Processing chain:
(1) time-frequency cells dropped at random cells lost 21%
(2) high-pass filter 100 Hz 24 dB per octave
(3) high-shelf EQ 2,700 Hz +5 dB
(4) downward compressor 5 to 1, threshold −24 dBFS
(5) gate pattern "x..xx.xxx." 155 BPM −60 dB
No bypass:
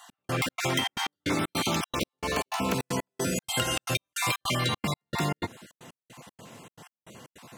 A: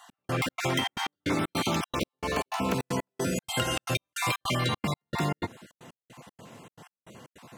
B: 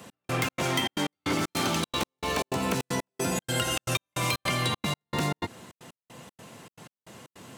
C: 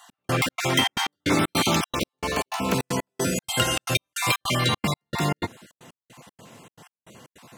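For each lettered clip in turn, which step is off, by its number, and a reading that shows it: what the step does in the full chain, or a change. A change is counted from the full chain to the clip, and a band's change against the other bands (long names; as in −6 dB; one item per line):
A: 3, 8 kHz band −4.0 dB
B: 1, change in momentary loudness spread +13 LU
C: 4, average gain reduction 3.0 dB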